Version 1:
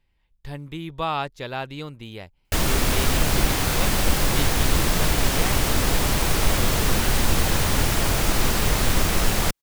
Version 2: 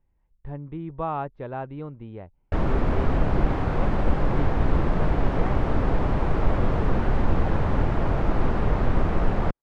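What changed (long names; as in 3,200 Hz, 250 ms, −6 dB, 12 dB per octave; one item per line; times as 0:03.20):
speech: add high-frequency loss of the air 180 metres
master: add low-pass filter 1,100 Hz 12 dB per octave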